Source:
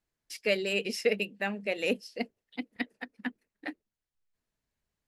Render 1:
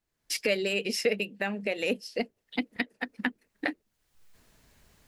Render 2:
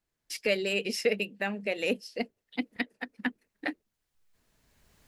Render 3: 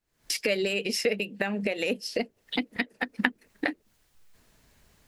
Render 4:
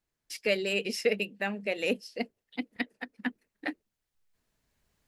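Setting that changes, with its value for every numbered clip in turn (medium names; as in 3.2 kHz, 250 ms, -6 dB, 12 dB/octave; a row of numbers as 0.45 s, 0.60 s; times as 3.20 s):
recorder AGC, rising by: 35 dB/s, 14 dB/s, 87 dB/s, 5.7 dB/s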